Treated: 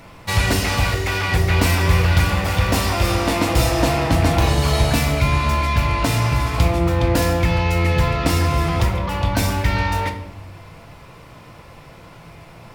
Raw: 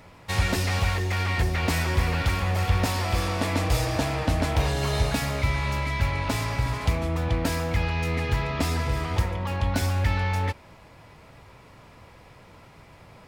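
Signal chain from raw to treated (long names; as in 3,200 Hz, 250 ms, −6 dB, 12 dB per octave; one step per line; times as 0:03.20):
parametric band 14,000 Hz +3.5 dB 0.72 octaves
rectangular room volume 220 cubic metres, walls mixed, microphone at 0.58 metres
wrong playback speed 24 fps film run at 25 fps
level +6 dB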